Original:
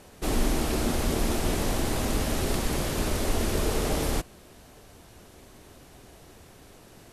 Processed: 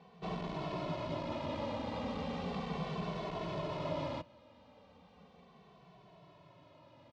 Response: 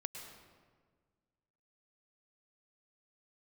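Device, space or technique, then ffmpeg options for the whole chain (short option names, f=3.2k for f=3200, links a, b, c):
barber-pole flanger into a guitar amplifier: -filter_complex "[0:a]asplit=2[a][b];[b]adelay=2.2,afreqshift=-0.36[c];[a][c]amix=inputs=2:normalize=1,asoftclip=type=tanh:threshold=-22.5dB,highpass=110,equalizer=f=170:t=q:w=4:g=9,equalizer=f=360:t=q:w=4:g=-7,equalizer=f=580:t=q:w=4:g=7,equalizer=f=1k:t=q:w=4:g=9,equalizer=f=1.6k:t=q:w=4:g=-7,lowpass=f=4k:w=0.5412,lowpass=f=4k:w=1.3066,volume=-6.5dB"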